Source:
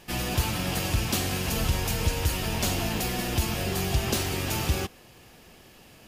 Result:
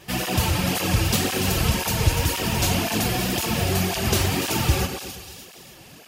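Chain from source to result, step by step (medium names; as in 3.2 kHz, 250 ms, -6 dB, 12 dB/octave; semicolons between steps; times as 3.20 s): two-band feedback delay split 3 kHz, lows 119 ms, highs 293 ms, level -7 dB; cancelling through-zero flanger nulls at 1.9 Hz, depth 4.9 ms; trim +7.5 dB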